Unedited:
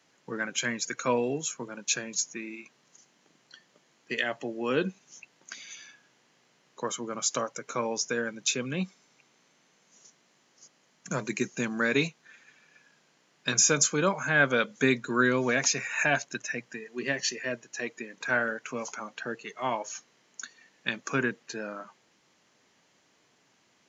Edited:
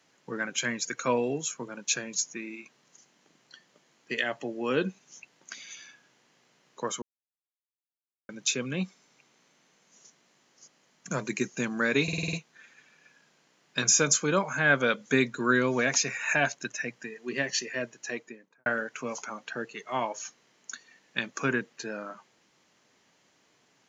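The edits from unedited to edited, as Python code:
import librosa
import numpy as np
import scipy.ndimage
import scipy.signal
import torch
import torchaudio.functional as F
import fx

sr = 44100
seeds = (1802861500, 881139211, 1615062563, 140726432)

y = fx.studio_fade_out(x, sr, start_s=17.75, length_s=0.61)
y = fx.edit(y, sr, fx.silence(start_s=7.02, length_s=1.27),
    fx.stutter(start_s=12.03, slice_s=0.05, count=7), tone=tone)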